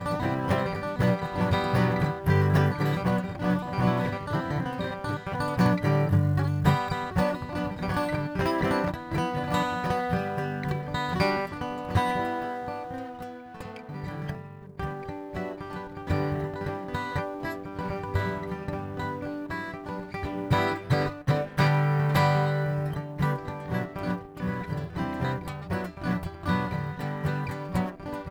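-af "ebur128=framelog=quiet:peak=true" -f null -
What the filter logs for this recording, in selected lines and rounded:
Integrated loudness:
  I:         -28.4 LUFS
  Threshold: -38.5 LUFS
Loudness range:
  LRA:         7.5 LU
  Threshold: -48.6 LUFS
  LRA low:   -33.2 LUFS
  LRA high:  -25.8 LUFS
True peak:
  Peak:      -10.6 dBFS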